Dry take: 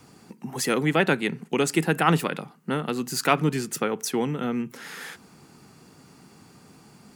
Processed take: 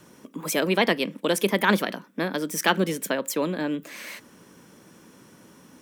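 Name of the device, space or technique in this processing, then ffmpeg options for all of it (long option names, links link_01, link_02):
nightcore: -af "asetrate=54243,aresample=44100"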